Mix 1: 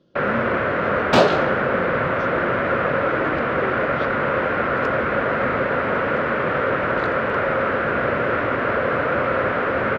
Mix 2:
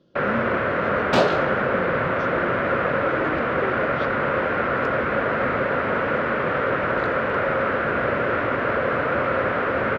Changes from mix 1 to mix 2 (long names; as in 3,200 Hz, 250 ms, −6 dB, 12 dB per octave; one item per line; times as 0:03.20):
first sound: send off
second sound −4.0 dB